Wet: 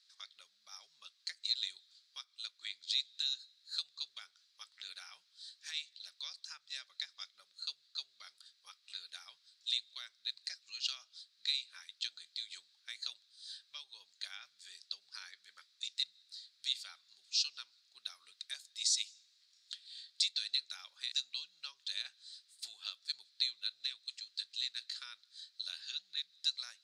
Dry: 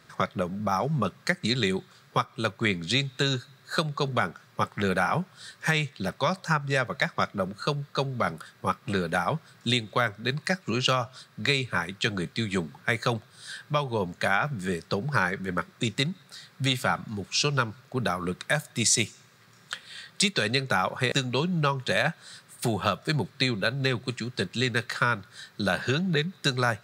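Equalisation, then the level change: ladder band-pass 4.8 kHz, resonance 55%; +1.0 dB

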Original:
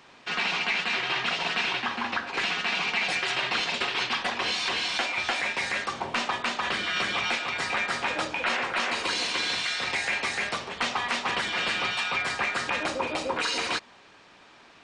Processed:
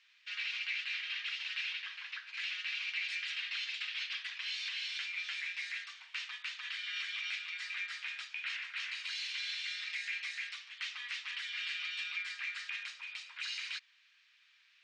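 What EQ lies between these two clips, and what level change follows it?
inverse Chebyshev high-pass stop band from 330 Hz, stop band 80 dB; distance through air 110 m; -7.0 dB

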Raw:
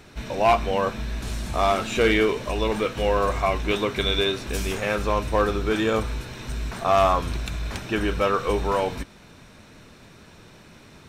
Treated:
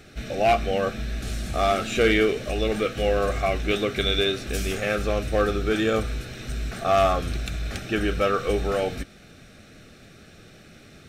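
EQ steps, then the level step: Butterworth band-stop 970 Hz, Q 2.8; 0.0 dB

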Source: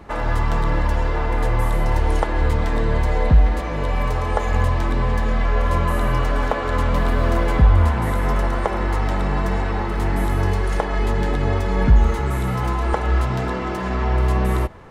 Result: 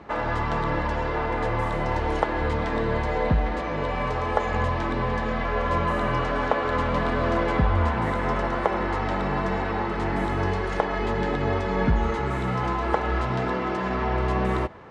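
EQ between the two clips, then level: high-pass 180 Hz 6 dB/octave; distance through air 110 m; 0.0 dB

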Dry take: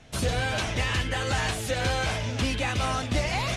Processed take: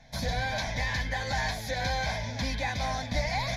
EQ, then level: peaking EQ 93 Hz -10 dB 0.46 oct; static phaser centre 1.9 kHz, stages 8; 0.0 dB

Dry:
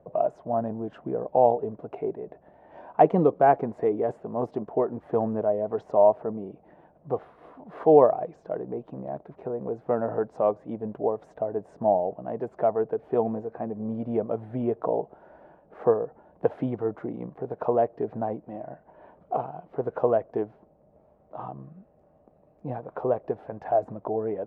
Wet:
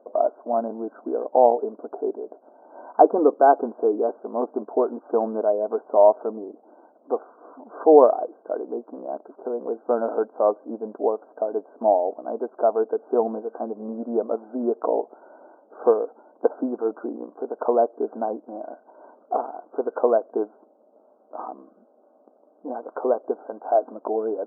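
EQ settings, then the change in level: brick-wall FIR band-pass 220–1600 Hz; +3.5 dB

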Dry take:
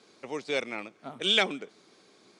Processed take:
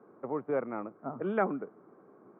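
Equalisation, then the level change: distance through air 420 m; dynamic bell 430 Hz, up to -4 dB, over -40 dBFS, Q 1; elliptic band-pass 110–1300 Hz, stop band 50 dB; +5.5 dB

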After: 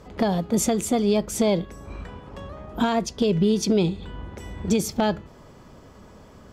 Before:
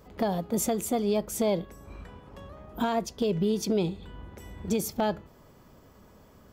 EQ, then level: low-pass 8.7 kHz 12 dB/octave; dynamic bell 690 Hz, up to -4 dB, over -38 dBFS, Q 0.72; +7.5 dB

